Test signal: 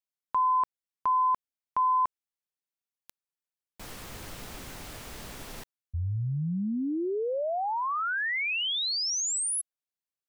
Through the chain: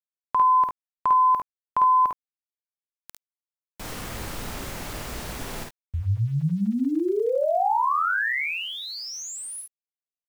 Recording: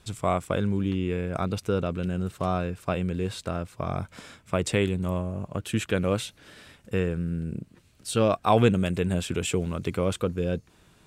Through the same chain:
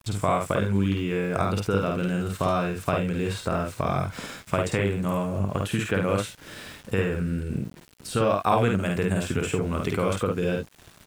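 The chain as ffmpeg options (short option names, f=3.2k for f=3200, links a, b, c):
-filter_complex "[0:a]adynamicequalizer=threshold=0.00316:dfrequency=3500:dqfactor=1.8:tfrequency=3500:tqfactor=1.8:attack=5:release=100:ratio=0.375:range=3.5:mode=cutabove:tftype=bell,acrossover=split=900|2000[a][b][c];[a]acompressor=threshold=-32dB:ratio=4[d];[b]acompressor=threshold=-38dB:ratio=2[e];[c]acompressor=threshold=-46dB:ratio=5[f];[d][e][f]amix=inputs=3:normalize=0,asplit=2[g][h];[h]aecho=0:1:51|71:0.708|0.335[i];[g][i]amix=inputs=2:normalize=0,aeval=exprs='val(0)*gte(abs(val(0)),0.00251)':c=same,volume=7dB"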